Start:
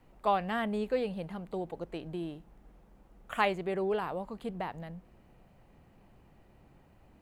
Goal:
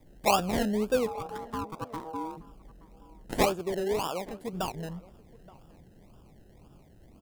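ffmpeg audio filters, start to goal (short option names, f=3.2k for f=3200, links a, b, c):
-filter_complex "[0:a]asettb=1/sr,asplit=3[a][b][c];[a]atrim=end=3.424[d];[b]atrim=start=3.42:end=4.53,asetpts=PTS-STARTPTS,afade=t=in:d=0.004:c=qsin,afade=t=out:st=1.106:d=0.004:c=qsin,highpass=f=340:p=1[e];[c]atrim=start=4.526[f];[d][e]acrossfade=d=0.004:c1=hsin:c2=qsin[g];[g][f]acrossfade=d=0.004:c1=qsin:c2=hsin,acrossover=split=540|5500[h][i][j];[i]acrusher=samples=30:mix=1:aa=0.000001:lfo=1:lforange=18:lforate=1.9[k];[h][k][j]amix=inputs=3:normalize=0,asplit=3[l][m][n];[l]afade=t=out:st=1.06:d=0.02[o];[m]aeval=exprs='val(0)*sin(2*PI*640*n/s)':c=same,afade=t=in:st=1.06:d=0.02,afade=t=out:st=2.36:d=0.02[p];[n]afade=t=in:st=2.36:d=0.02[q];[o][p][q]amix=inputs=3:normalize=0,asplit=2[r][s];[s]adelay=874.6,volume=-21dB,highshelf=f=4k:g=-19.7[t];[r][t]amix=inputs=2:normalize=0,volume=5dB"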